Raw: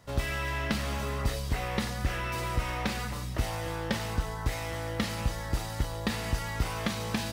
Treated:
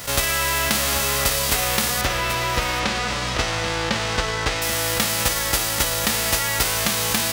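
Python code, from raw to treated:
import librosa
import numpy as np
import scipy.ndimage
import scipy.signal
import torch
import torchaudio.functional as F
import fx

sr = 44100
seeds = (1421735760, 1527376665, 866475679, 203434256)

y = fx.envelope_flatten(x, sr, power=0.3)
y = fx.air_absorb(y, sr, metres=120.0, at=(2.01, 4.62))
y = y + 10.0 ** (-14.0 / 20.0) * np.pad(y, (int(784 * sr / 1000.0), 0))[:len(y)]
y = fx.env_flatten(y, sr, amount_pct=50)
y = y * librosa.db_to_amplitude(6.0)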